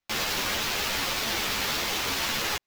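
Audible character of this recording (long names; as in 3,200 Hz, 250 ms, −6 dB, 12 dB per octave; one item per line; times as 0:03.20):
aliases and images of a low sample rate 9,400 Hz, jitter 20%
a shimmering, thickened sound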